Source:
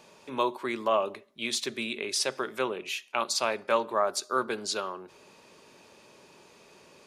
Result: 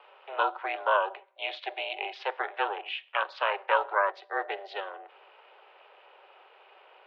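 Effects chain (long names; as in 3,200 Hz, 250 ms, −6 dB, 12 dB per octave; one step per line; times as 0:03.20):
ring modulation 200 Hz
gain on a spectral selection 0:04.12–0:05.06, 610–1,600 Hz −8 dB
single-sideband voice off tune +180 Hz 240–3,000 Hz
level +4 dB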